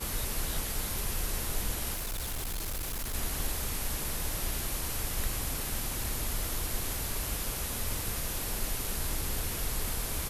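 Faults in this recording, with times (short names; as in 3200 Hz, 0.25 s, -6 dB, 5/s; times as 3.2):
1.93–3.15 clipped -31.5 dBFS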